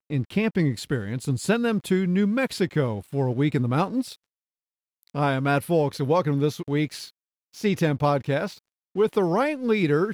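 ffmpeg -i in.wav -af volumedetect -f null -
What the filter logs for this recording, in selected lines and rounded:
mean_volume: -24.4 dB
max_volume: -8.8 dB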